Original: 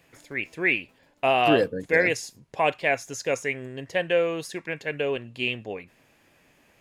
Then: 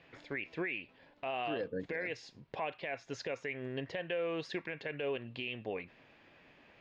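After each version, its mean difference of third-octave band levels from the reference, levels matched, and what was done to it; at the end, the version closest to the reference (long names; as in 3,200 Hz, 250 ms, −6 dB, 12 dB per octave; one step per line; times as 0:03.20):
6.0 dB: low-pass filter 4,200 Hz 24 dB per octave
low-shelf EQ 160 Hz −4.5 dB
downward compressor 3 to 1, threshold −33 dBFS, peak gain reduction 13 dB
brickwall limiter −27.5 dBFS, peak gain reduction 10 dB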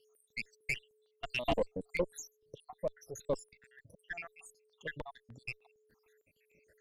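12.5 dB: time-frequency cells dropped at random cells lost 84%
steady tone 430 Hz −64 dBFS
tube saturation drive 22 dB, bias 0.65
step-sequenced phaser 6.6 Hz 230–6,100 Hz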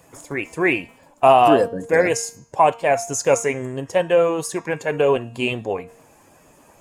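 3.5 dB: spectral magnitudes quantised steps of 15 dB
octave-band graphic EQ 1,000/2,000/4,000/8,000 Hz +9/−8/−8/+9 dB
speech leveller within 3 dB 0.5 s
hum removal 231.5 Hz, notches 31
level +6 dB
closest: third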